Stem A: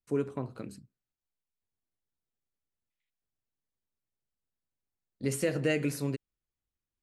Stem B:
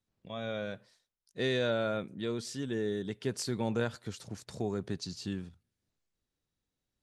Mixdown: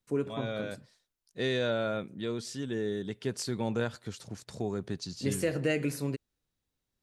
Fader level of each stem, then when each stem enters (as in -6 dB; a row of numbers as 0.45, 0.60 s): -0.5, +0.5 dB; 0.00, 0.00 s